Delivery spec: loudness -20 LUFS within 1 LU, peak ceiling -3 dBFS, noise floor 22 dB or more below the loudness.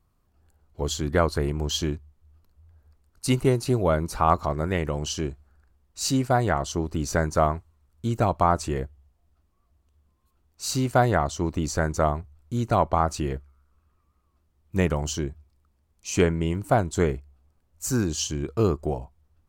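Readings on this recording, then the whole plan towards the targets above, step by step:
loudness -25.5 LUFS; peak level -6.5 dBFS; loudness target -20.0 LUFS
-> trim +5.5 dB; peak limiter -3 dBFS

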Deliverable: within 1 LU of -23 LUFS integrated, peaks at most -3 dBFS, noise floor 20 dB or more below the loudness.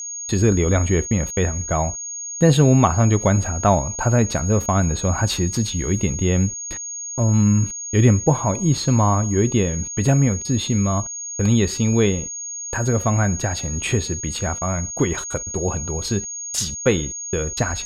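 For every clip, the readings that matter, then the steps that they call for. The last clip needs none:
steady tone 6.6 kHz; tone level -28 dBFS; loudness -20.0 LUFS; peak level -2.5 dBFS; loudness target -23.0 LUFS
-> band-stop 6.6 kHz, Q 30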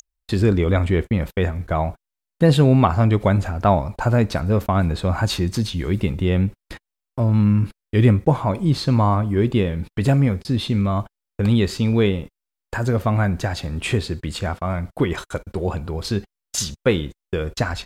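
steady tone not found; loudness -20.5 LUFS; peak level -2.5 dBFS; loudness target -23.0 LUFS
-> trim -2.5 dB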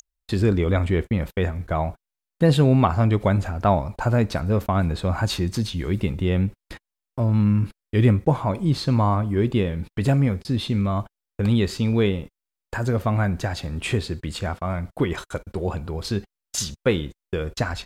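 loudness -23.0 LUFS; peak level -5.0 dBFS; noise floor -87 dBFS

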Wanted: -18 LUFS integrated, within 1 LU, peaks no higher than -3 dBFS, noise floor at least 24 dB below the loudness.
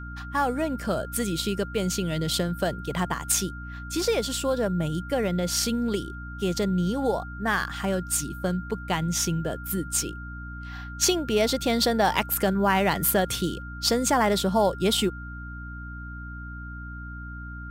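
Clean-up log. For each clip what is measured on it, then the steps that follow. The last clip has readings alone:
hum 60 Hz; highest harmonic 300 Hz; hum level -35 dBFS; steady tone 1.4 kHz; tone level -40 dBFS; loudness -25.5 LUFS; peak level -6.0 dBFS; loudness target -18.0 LUFS
-> de-hum 60 Hz, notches 5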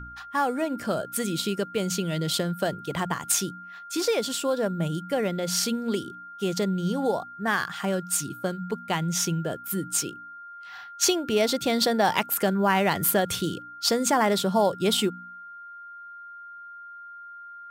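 hum not found; steady tone 1.4 kHz; tone level -40 dBFS
-> band-stop 1.4 kHz, Q 30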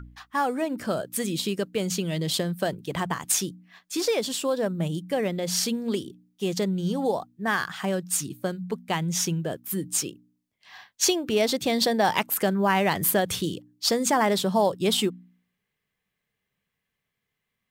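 steady tone not found; loudness -26.0 LUFS; peak level -6.5 dBFS; loudness target -18.0 LUFS
-> trim +8 dB; peak limiter -3 dBFS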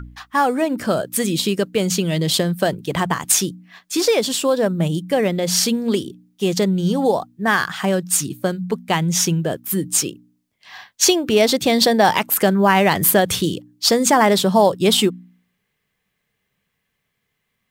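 loudness -18.0 LUFS; peak level -3.0 dBFS; noise floor -74 dBFS

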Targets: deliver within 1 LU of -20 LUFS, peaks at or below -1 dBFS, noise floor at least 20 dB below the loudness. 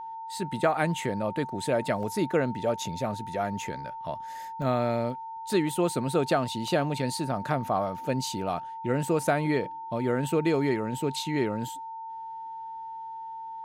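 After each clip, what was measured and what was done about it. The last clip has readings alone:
dropouts 3; longest dropout 1.3 ms; steady tone 900 Hz; tone level -36 dBFS; loudness -29.5 LUFS; peak level -11.5 dBFS; loudness target -20.0 LUFS
-> interpolate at 2.03/4.62/6.68 s, 1.3 ms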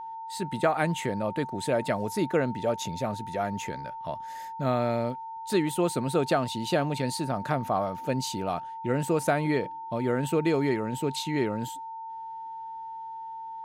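dropouts 0; steady tone 900 Hz; tone level -36 dBFS
-> band-stop 900 Hz, Q 30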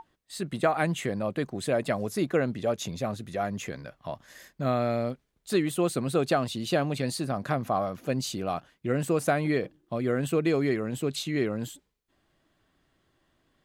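steady tone not found; loudness -29.0 LUFS; peak level -12.0 dBFS; loudness target -20.0 LUFS
-> trim +9 dB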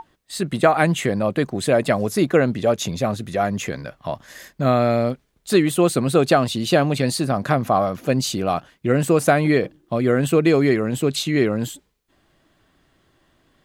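loudness -20.0 LUFS; peak level -3.0 dBFS; noise floor -65 dBFS

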